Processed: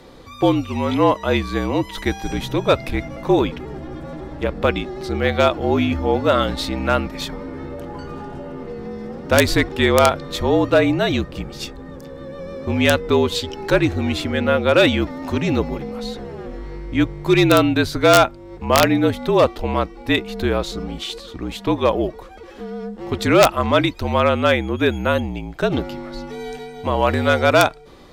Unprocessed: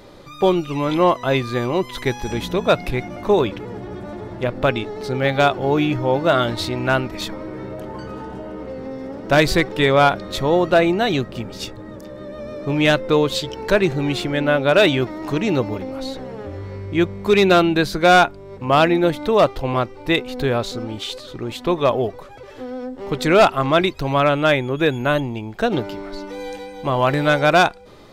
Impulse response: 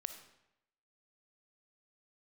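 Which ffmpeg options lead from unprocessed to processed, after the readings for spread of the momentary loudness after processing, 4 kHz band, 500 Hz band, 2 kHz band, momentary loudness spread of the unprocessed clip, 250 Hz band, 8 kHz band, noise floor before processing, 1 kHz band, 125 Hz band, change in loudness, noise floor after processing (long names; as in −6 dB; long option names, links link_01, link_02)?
17 LU, 0.0 dB, −0.5 dB, −1.0 dB, 17 LU, +1.0 dB, +4.0 dB, −38 dBFS, −1.5 dB, +0.5 dB, 0.0 dB, −39 dBFS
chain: -af "afreqshift=-49,aeval=exprs='(mod(1.26*val(0)+1,2)-1)/1.26':channel_layout=same"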